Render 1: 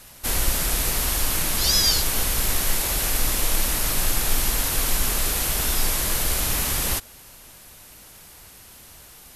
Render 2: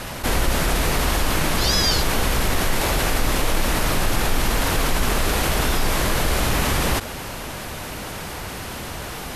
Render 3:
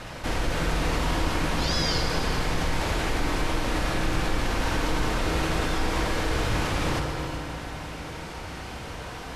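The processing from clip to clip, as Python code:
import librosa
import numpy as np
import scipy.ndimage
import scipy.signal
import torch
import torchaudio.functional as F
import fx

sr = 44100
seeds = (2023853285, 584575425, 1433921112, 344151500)

y1 = fx.lowpass(x, sr, hz=1700.0, slope=6)
y1 = fx.low_shelf(y1, sr, hz=60.0, db=-7.0)
y1 = fx.env_flatten(y1, sr, amount_pct=50)
y1 = F.gain(torch.from_numpy(y1), 6.0).numpy()
y2 = fx.air_absorb(y1, sr, metres=63.0)
y2 = y2 + 10.0 ** (-12.5 / 20.0) * np.pad(y2, (int(375 * sr / 1000.0), 0))[:len(y2)]
y2 = fx.rev_fdn(y2, sr, rt60_s=3.2, lf_ratio=1.0, hf_ratio=0.6, size_ms=19.0, drr_db=2.0)
y2 = F.gain(torch.from_numpy(y2), -7.0).numpy()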